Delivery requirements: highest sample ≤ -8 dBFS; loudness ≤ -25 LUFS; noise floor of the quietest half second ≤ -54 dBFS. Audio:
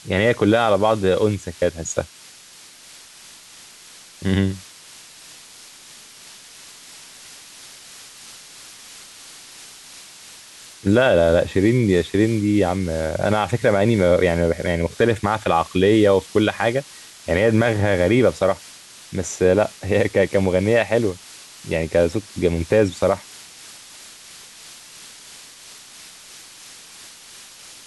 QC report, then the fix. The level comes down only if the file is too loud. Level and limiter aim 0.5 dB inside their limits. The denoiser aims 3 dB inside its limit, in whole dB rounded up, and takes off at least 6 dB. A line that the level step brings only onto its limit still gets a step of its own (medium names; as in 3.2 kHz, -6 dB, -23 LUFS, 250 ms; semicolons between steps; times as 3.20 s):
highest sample -5.5 dBFS: fail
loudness -19.0 LUFS: fail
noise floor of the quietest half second -45 dBFS: fail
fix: noise reduction 6 dB, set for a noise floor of -45 dBFS; trim -6.5 dB